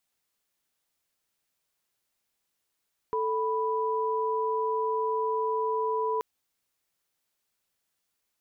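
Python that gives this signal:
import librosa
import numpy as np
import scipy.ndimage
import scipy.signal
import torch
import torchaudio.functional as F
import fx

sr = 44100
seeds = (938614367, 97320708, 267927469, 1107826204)

y = fx.chord(sr, length_s=3.08, notes=(69, 83), wave='sine', level_db=-28.0)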